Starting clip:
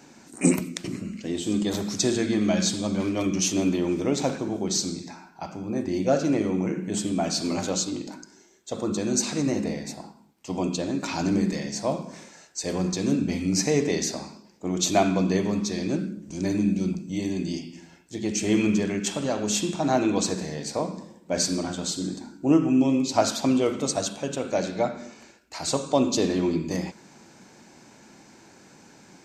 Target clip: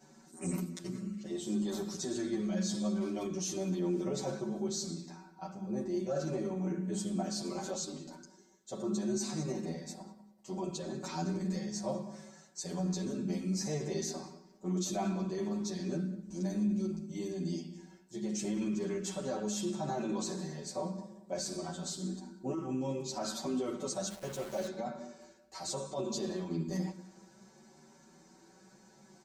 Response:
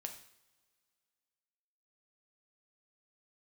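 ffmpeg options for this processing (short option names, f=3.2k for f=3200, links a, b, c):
-filter_complex "[0:a]equalizer=f=2.5k:w=1.7:g=-8.5,aecho=1:1:5.3:0.92,alimiter=limit=-16.5dB:level=0:latency=1:release=12,asettb=1/sr,asplit=3[a][b][c];[a]atrim=end=24.104[d];[b]atrim=start=24.1:end=24.67,asetpts=PTS-STARTPTS,afade=t=in:d=0.004:c=qsin,afade=t=out:st=0.566:d=0.004:c=qsin,aeval=exprs='val(0)*gte(abs(val(0)),0.0251)':c=same[e];[c]atrim=start=24.666[f];[d][e]acrossfade=d=0.004:c1=hsin:c2=qsin[g];[g][f]acrossfade=d=0.004:c1=qsin:c2=hsin,asplit=2[h][i];[i]adelay=193,lowpass=f=3.1k:p=1,volume=-17.5dB,asplit=2[j][k];[k]adelay=193,lowpass=f=3.1k:p=1,volume=0.35,asplit=2[l][m];[m]adelay=193,lowpass=f=3.1k:p=1,volume=0.35[n];[j][l][n]amix=inputs=3:normalize=0[o];[h][o]amix=inputs=2:normalize=0,asplit=2[p][q];[q]adelay=10.7,afreqshift=0.65[r];[p][r]amix=inputs=2:normalize=1,volume=-8dB"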